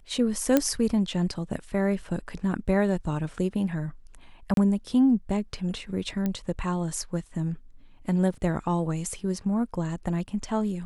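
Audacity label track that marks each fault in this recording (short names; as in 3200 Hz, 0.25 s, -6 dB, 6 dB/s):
0.570000	0.570000	pop -7 dBFS
4.540000	4.570000	gap 32 ms
6.260000	6.260000	pop -16 dBFS
8.340000	8.340000	gap 2.8 ms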